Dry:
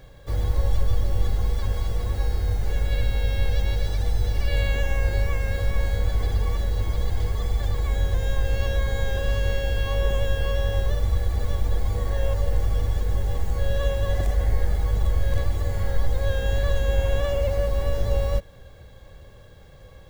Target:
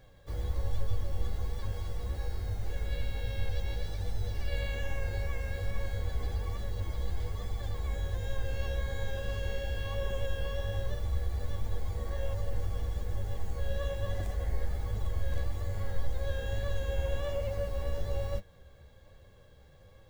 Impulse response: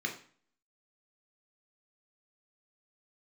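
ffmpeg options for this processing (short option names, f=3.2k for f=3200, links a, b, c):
-af "flanger=delay=8.8:depth=6.3:regen=43:speed=1.2:shape=triangular,volume=-5.5dB"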